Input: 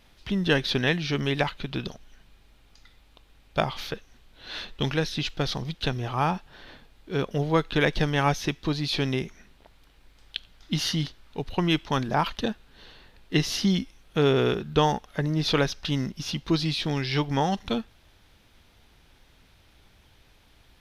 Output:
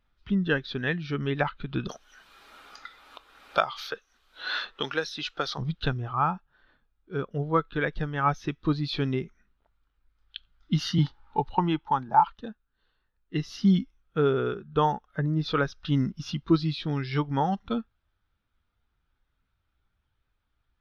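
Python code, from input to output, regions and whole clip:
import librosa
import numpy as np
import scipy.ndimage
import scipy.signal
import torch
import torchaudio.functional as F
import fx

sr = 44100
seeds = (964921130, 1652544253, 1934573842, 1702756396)

y = fx.chain(x, sr, fx.bass_treble(bass_db=-14, treble_db=6),
    fx.band_squash(depth_pct=70), at=(1.89, 5.58))
y = fx.chain(y, sr, fx.peak_eq(hz=860.0, db=14.0, octaves=0.26),
    fx.band_squash(depth_pct=40), at=(10.98, 12.28))
y = fx.peak_eq(y, sr, hz=1300.0, db=8.5, octaves=0.67)
y = fx.rider(y, sr, range_db=5, speed_s=0.5)
y = fx.spectral_expand(y, sr, expansion=1.5)
y = y * 10.0 ** (-4.0 / 20.0)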